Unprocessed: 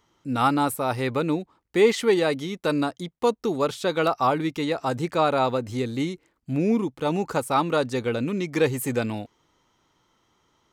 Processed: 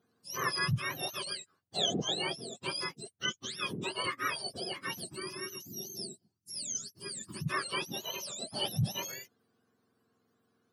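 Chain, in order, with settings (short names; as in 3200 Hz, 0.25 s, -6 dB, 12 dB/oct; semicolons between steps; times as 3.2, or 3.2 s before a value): spectrum mirrored in octaves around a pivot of 1200 Hz; spectral gain 5.05–7.46, 420–4300 Hz -13 dB; gain -8 dB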